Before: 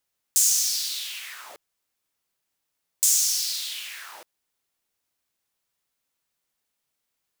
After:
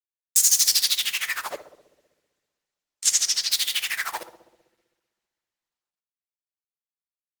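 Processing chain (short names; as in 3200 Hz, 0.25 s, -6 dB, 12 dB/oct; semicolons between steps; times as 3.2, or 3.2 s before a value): in parallel at -3 dB: compressor 8:1, threshold -35 dBFS, peak gain reduction 18 dB; on the sum: tremolo 13 Hz, depth 91%; reverb removal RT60 0.6 s; 1.51–3.52 air absorption 79 m; bit-crush 9-bit; bell 1900 Hz +5 dB 0.35 oct; darkening echo 64 ms, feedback 79%, low-pass 1000 Hz, level -11 dB; two-slope reverb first 0.52 s, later 2.5 s, from -26 dB, DRR 14.5 dB; maximiser +15 dB; gain -3 dB; Opus 16 kbps 48000 Hz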